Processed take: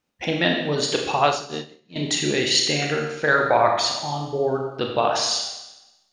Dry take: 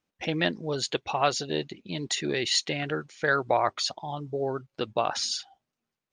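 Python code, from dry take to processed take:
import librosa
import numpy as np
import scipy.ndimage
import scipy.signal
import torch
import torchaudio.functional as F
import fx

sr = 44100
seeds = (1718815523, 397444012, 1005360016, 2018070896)

y = fx.rev_schroeder(x, sr, rt60_s=0.99, comb_ms=27, drr_db=1.0)
y = fx.upward_expand(y, sr, threshold_db=-39.0, expansion=2.5, at=(1.26, 1.96))
y = y * 10.0 ** (4.5 / 20.0)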